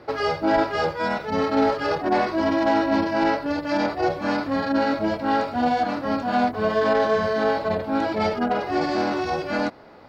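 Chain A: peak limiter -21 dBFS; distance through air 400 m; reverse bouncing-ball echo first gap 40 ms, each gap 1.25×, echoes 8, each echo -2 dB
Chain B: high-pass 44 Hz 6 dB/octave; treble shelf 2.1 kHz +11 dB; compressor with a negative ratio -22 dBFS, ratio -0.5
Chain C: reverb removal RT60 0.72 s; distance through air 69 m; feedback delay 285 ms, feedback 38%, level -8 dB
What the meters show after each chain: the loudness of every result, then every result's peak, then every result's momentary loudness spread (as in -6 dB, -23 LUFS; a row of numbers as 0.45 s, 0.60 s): -26.5 LUFS, -23.5 LUFS, -24.0 LUFS; -13.5 dBFS, -9.0 dBFS, -10.0 dBFS; 3 LU, 3 LU, 4 LU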